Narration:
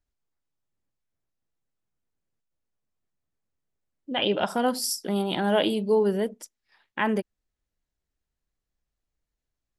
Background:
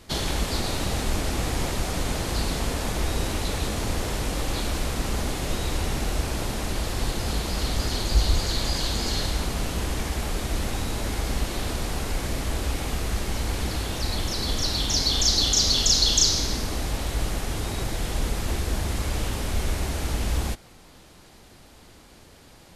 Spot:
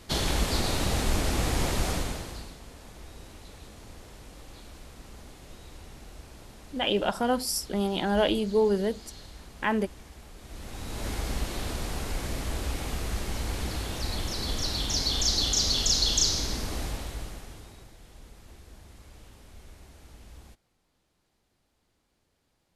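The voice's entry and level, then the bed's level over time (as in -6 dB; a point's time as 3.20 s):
2.65 s, -1.5 dB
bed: 1.91 s -0.5 dB
2.58 s -20 dB
10.36 s -20 dB
11.07 s -4.5 dB
16.84 s -4.5 dB
17.95 s -23.5 dB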